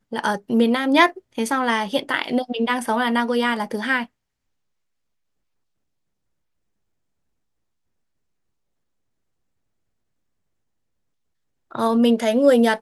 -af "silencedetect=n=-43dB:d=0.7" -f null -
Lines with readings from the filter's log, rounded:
silence_start: 4.06
silence_end: 11.71 | silence_duration: 7.65